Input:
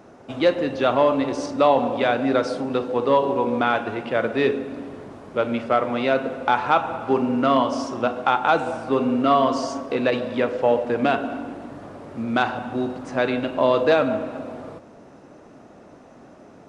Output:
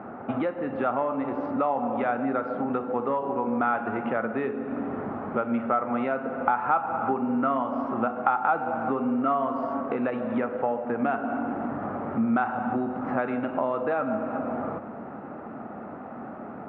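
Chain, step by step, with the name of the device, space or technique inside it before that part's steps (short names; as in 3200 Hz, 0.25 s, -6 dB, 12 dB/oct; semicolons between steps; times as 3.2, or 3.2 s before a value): bass amplifier (compressor 4:1, threshold -34 dBFS, peak gain reduction 18 dB; speaker cabinet 69–2200 Hz, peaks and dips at 220 Hz +8 dB, 790 Hz +8 dB, 1300 Hz +9 dB); gain +4.5 dB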